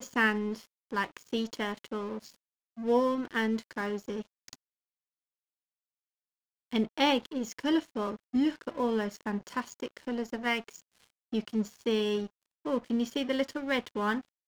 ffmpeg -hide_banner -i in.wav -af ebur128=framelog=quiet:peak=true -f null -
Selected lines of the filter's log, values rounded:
Integrated loudness:
  I:         -31.8 LUFS
  Threshold: -42.3 LUFS
Loudness range:
  LRA:         4.7 LU
  Threshold: -53.1 LUFS
  LRA low:   -35.7 LUFS
  LRA high:  -31.0 LUFS
True peak:
  Peak:      -13.6 dBFS